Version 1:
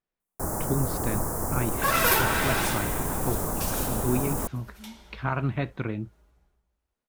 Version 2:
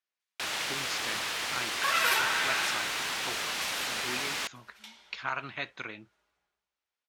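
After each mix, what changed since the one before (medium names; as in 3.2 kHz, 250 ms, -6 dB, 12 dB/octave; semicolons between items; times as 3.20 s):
speech: remove distance through air 260 m; first sound: remove Chebyshev band-stop 1–8.7 kHz, order 2; master: add band-pass filter 2.7 kHz, Q 0.66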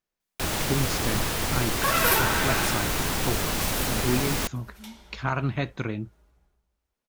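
master: remove band-pass filter 2.7 kHz, Q 0.66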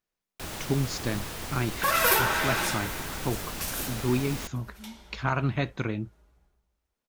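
first sound -9.5 dB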